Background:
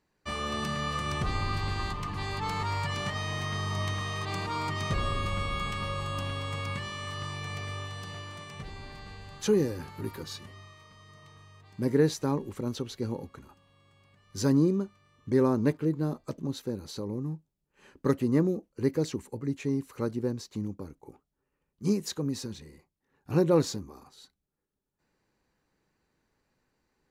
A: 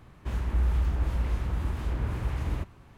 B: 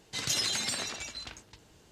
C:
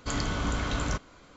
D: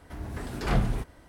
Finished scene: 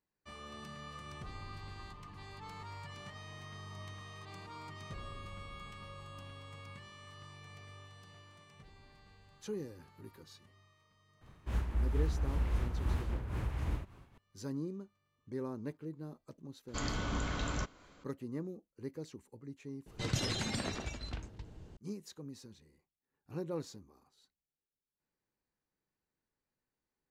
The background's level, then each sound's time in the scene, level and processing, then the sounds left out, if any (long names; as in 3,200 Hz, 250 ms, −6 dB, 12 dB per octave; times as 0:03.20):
background −16 dB
0:11.21: mix in A −1 dB + amplitude modulation by smooth noise
0:16.68: mix in C −6.5 dB
0:19.86: mix in B −1.5 dB + spectral tilt −3.5 dB per octave
not used: D